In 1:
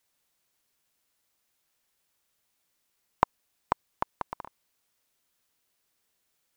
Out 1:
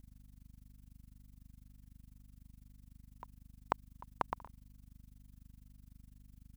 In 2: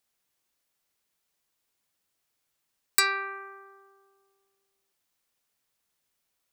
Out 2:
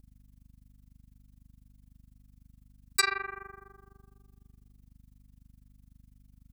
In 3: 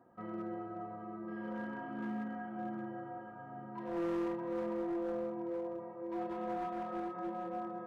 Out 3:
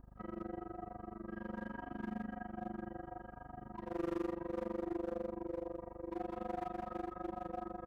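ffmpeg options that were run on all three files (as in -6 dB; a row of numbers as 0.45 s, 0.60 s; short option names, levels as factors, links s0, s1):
-af "crystalizer=i=0.5:c=0,aeval=exprs='val(0)+0.00224*(sin(2*PI*50*n/s)+sin(2*PI*2*50*n/s)/2+sin(2*PI*3*50*n/s)/3+sin(2*PI*4*50*n/s)/4+sin(2*PI*5*50*n/s)/5)':c=same,tremolo=f=24:d=0.974,volume=1.12"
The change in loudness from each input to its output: -10.0 LU, -4.0 LU, -3.0 LU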